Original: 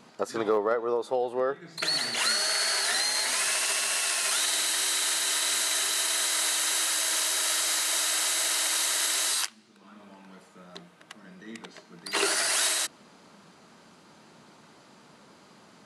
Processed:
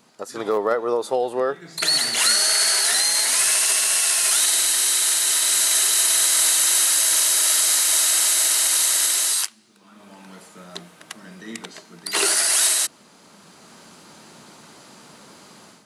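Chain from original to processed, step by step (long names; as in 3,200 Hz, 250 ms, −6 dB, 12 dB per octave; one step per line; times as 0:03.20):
high-shelf EQ 6,300 Hz +12 dB
automatic gain control
level −4.5 dB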